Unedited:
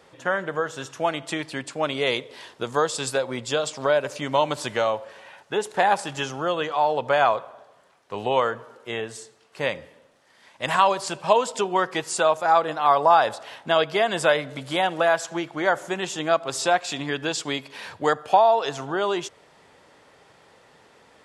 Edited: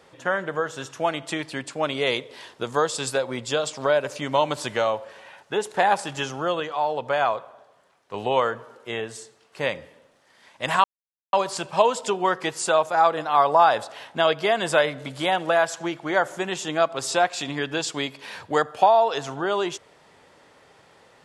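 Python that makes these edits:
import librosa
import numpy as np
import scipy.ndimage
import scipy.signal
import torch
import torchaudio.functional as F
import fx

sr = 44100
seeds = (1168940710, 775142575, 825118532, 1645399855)

y = fx.edit(x, sr, fx.clip_gain(start_s=6.6, length_s=1.54, db=-3.0),
    fx.insert_silence(at_s=10.84, length_s=0.49), tone=tone)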